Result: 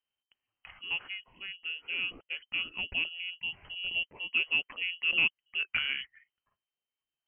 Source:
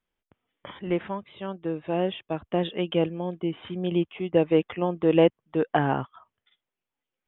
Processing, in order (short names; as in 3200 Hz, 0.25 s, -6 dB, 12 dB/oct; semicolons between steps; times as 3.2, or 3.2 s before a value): inverted band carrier 3100 Hz; gain -8.5 dB